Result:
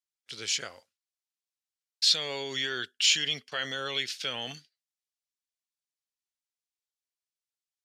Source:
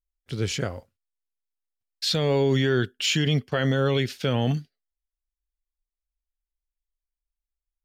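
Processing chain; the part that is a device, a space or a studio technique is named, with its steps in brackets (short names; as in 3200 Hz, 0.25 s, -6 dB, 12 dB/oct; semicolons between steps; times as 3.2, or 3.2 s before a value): piezo pickup straight into a mixer (LPF 5700 Hz 12 dB/oct; differentiator); gain +9 dB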